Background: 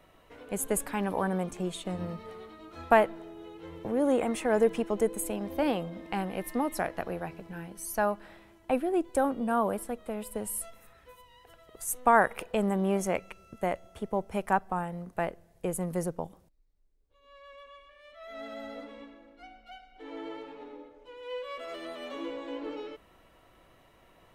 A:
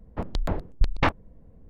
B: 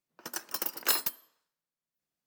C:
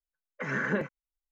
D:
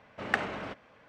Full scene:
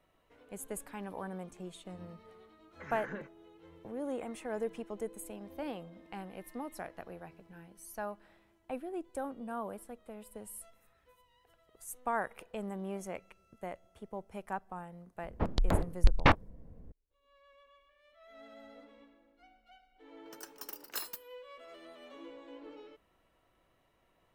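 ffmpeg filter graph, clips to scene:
ffmpeg -i bed.wav -i cue0.wav -i cue1.wav -i cue2.wav -filter_complex "[0:a]volume=-12dB[link_01];[3:a]atrim=end=1.31,asetpts=PTS-STARTPTS,volume=-13.5dB,afade=type=in:duration=0.004:curve=hsin,afade=type=out:start_time=1.306:duration=0.004:curve=hsin,adelay=2400[link_02];[1:a]atrim=end=1.69,asetpts=PTS-STARTPTS,volume=-1dB,afade=type=in:duration=0.004:curve=hsin,afade=type=out:start_time=1.686:duration=0.004:curve=hsin,adelay=15230[link_03];[2:a]atrim=end=2.26,asetpts=PTS-STARTPTS,volume=-12dB,afade=type=in:duration=0.004:curve=hsin,afade=type=out:start_time=2.256:duration=0.004:curve=hsin,adelay=20070[link_04];[link_01][link_02][link_03][link_04]amix=inputs=4:normalize=0" out.wav

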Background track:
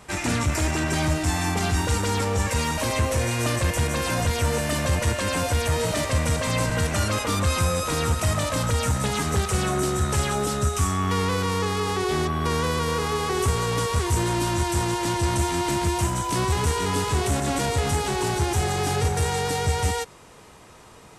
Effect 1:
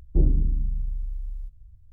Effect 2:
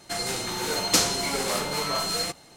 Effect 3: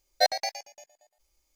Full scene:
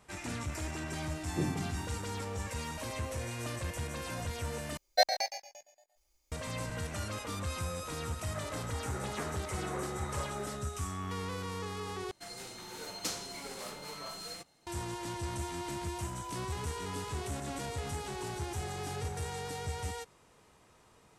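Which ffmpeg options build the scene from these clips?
ffmpeg -i bed.wav -i cue0.wav -i cue1.wav -i cue2.wav -filter_complex "[2:a]asplit=2[link_01][link_02];[0:a]volume=-14.5dB[link_03];[1:a]highpass=frequency=140:width=0.5412,highpass=frequency=140:width=1.3066[link_04];[3:a]aecho=1:1:135:0.211[link_05];[link_01]highpass=frequency=380:width_type=q:width=0.5412,highpass=frequency=380:width_type=q:width=1.307,lowpass=frequency=2100:width_type=q:width=0.5176,lowpass=frequency=2100:width_type=q:width=0.7071,lowpass=frequency=2100:width_type=q:width=1.932,afreqshift=-80[link_06];[link_03]asplit=3[link_07][link_08][link_09];[link_07]atrim=end=4.774[link_10];[link_05]atrim=end=1.55,asetpts=PTS-STARTPTS,volume=-2.5dB[link_11];[link_08]atrim=start=6.316:end=12.114[link_12];[link_02]atrim=end=2.56,asetpts=PTS-STARTPTS,volume=-16dB[link_13];[link_09]atrim=start=14.666[link_14];[link_04]atrim=end=1.92,asetpts=PTS-STARTPTS,volume=-3.5dB,afade=type=in:duration=0.004:curve=hsin,afade=type=out:start_time=1.916:duration=0.004:curve=hsin,adelay=1210[link_15];[link_06]atrim=end=2.56,asetpts=PTS-STARTPTS,volume=-11.5dB,afade=type=in:duration=0.004:curve=hsin,afade=type=out:start_time=2.556:duration=0.004:curve=hsin,adelay=8240[link_16];[link_10][link_11]acrossfade=duration=0.004:curve1=hsin:curve2=hsin[link_17];[link_17][link_12]acrossfade=duration=0.004:curve1=hsin:curve2=hsin[link_18];[link_18][link_13]acrossfade=duration=0.004:curve1=hsin:curve2=hsin[link_19];[link_19][link_14]acrossfade=duration=0.004:curve1=hsin:curve2=hsin[link_20];[link_20][link_15][link_16]amix=inputs=3:normalize=0" out.wav

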